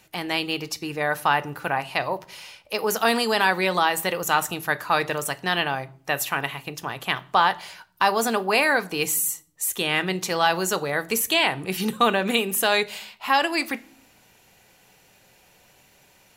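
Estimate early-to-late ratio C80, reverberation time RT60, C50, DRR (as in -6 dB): 25.5 dB, 0.50 s, 21.5 dB, 11.0 dB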